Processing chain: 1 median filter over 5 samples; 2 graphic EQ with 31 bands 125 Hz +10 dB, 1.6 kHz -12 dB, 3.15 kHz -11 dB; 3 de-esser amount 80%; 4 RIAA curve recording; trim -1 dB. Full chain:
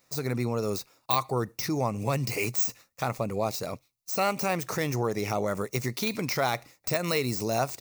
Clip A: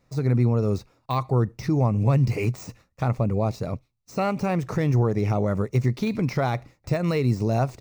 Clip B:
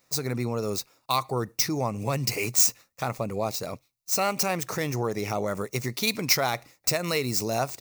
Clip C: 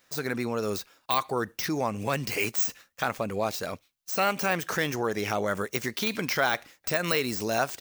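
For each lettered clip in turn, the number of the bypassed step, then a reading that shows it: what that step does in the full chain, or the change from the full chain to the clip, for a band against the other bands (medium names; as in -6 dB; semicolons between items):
4, 125 Hz band +12.5 dB; 3, crest factor change +3.0 dB; 2, 125 Hz band -5.5 dB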